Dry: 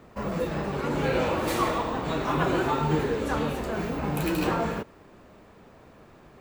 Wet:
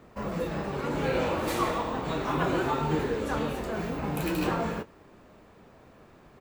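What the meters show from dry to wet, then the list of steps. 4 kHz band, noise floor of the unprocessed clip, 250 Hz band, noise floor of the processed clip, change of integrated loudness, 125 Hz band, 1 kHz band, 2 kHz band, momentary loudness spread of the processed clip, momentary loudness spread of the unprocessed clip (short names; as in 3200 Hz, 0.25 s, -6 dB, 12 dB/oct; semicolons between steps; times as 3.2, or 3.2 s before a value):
-2.5 dB, -53 dBFS, -2.5 dB, -55 dBFS, -2.5 dB, -3.0 dB, -2.5 dB, -2.5 dB, 5 LU, 5 LU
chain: doubler 23 ms -13 dB; gain -2.5 dB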